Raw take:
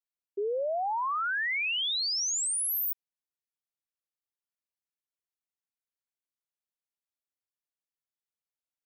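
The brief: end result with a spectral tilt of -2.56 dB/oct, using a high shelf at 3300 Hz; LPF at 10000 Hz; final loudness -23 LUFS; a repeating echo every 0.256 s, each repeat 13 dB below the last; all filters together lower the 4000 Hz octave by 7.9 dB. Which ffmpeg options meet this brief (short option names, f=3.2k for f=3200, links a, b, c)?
-af "lowpass=10k,highshelf=f=3.3k:g=-4,equalizer=f=4k:t=o:g=-7.5,aecho=1:1:256|512|768:0.224|0.0493|0.0108,volume=9dB"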